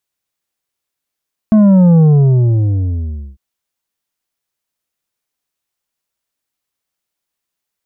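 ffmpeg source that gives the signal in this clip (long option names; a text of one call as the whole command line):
ffmpeg -f lavfi -i "aevalsrc='0.531*clip((1.85-t)/1.37,0,1)*tanh(2.24*sin(2*PI*220*1.85/log(65/220)*(exp(log(65/220)*t/1.85)-1)))/tanh(2.24)':duration=1.85:sample_rate=44100" out.wav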